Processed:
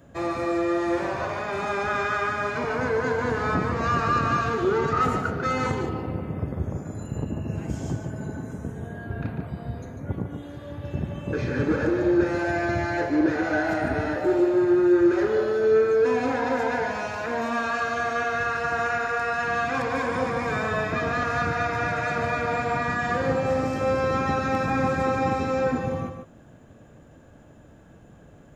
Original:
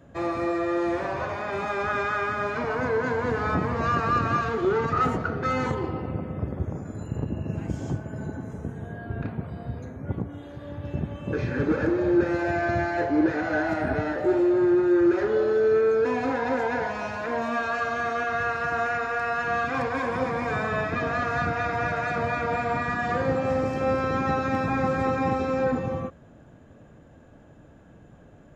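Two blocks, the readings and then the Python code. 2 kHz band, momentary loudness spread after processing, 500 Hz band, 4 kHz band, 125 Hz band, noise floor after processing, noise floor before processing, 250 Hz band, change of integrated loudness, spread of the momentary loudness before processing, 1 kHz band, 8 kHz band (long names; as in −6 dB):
+1.5 dB, 11 LU, +1.0 dB, +3.5 dB, +1.0 dB, −50 dBFS, −51 dBFS, +0.5 dB, +1.0 dB, 11 LU, +1.0 dB, can't be measured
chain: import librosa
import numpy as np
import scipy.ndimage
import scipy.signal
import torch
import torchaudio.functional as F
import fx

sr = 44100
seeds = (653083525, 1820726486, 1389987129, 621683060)

p1 = fx.high_shelf(x, sr, hz=5800.0, db=9.0)
y = p1 + fx.echo_single(p1, sr, ms=146, db=-7.5, dry=0)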